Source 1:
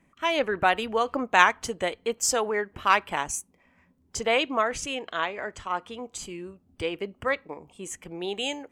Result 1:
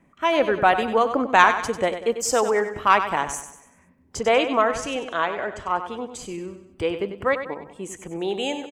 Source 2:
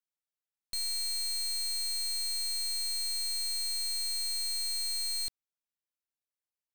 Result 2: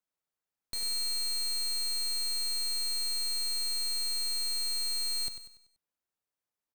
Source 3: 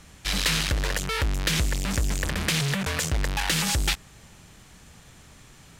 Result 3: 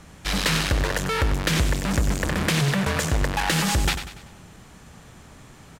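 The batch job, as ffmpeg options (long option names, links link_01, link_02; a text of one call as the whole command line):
ffmpeg -i in.wav -filter_complex "[0:a]lowshelf=frequency=74:gain=-5.5,acrossover=split=1600[link_01][link_02];[link_01]acontrast=81[link_03];[link_03][link_02]amix=inputs=2:normalize=0,aecho=1:1:96|192|288|384|480:0.316|0.136|0.0585|0.0251|0.0108,volume=-1dB" out.wav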